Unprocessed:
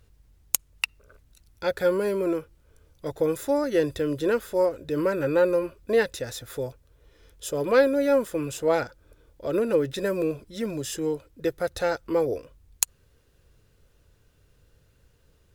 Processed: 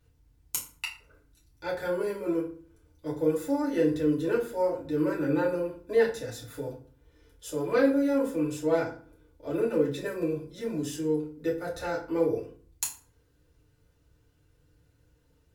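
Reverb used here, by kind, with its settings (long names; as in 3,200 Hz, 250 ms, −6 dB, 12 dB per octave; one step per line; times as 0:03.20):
feedback delay network reverb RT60 0.44 s, low-frequency decay 1.45×, high-frequency decay 0.7×, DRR −6 dB
level −12 dB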